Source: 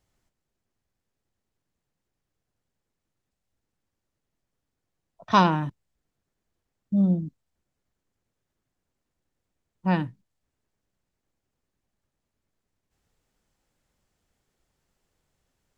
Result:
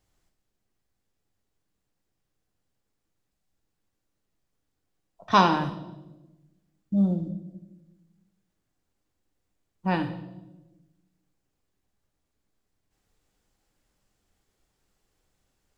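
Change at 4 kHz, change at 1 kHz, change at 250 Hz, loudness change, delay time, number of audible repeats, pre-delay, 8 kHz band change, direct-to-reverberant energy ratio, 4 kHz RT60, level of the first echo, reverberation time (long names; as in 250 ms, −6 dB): +2.0 dB, +0.5 dB, −1.5 dB, −1.0 dB, no echo audible, no echo audible, 3 ms, can't be measured, 6.0 dB, 0.85 s, no echo audible, 1.1 s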